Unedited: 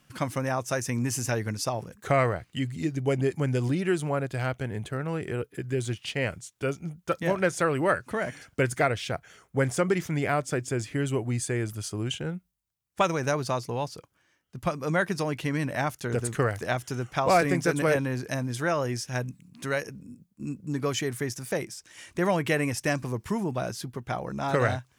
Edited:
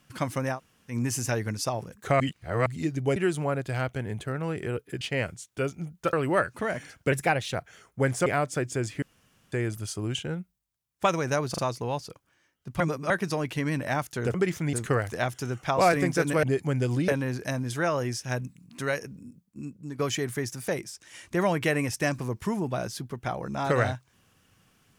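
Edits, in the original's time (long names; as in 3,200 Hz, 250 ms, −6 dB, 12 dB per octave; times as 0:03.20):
0:00.55–0:00.92: fill with room tone, crossfade 0.10 s
0:02.20–0:02.66: reverse
0:03.16–0:03.81: move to 0:17.92
0:05.66–0:06.05: remove
0:07.17–0:07.65: remove
0:08.64–0:09.09: play speed 112%
0:09.83–0:10.22: move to 0:16.22
0:10.98–0:11.48: fill with room tone
0:13.46: stutter 0.04 s, 3 plays
0:14.68–0:14.98: reverse
0:20.03–0:20.83: fade out, to −9 dB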